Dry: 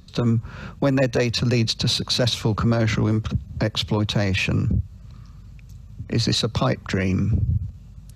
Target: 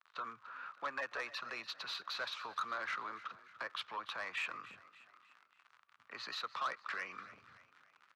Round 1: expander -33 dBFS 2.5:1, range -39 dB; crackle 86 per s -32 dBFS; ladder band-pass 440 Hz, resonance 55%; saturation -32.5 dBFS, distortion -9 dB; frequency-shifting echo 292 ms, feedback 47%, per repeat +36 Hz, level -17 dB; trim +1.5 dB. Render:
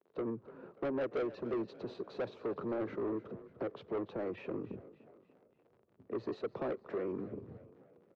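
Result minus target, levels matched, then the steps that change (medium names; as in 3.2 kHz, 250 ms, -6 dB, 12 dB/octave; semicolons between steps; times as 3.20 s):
500 Hz band +13.0 dB
change: ladder band-pass 1.4 kHz, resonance 55%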